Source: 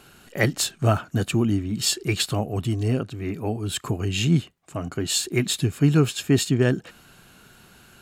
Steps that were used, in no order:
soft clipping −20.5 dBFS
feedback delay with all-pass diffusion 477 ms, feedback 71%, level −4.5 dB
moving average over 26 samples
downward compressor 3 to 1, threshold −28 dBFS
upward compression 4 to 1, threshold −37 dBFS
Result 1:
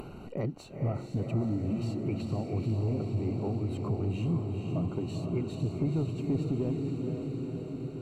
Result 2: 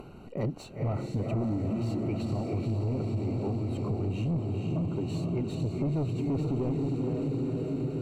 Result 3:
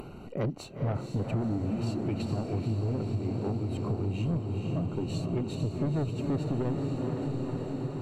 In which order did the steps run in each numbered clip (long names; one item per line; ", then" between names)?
downward compressor, then feedback delay with all-pass diffusion, then soft clipping, then moving average, then upward compression
upward compression, then feedback delay with all-pass diffusion, then soft clipping, then moving average, then downward compressor
moving average, then soft clipping, then feedback delay with all-pass diffusion, then upward compression, then downward compressor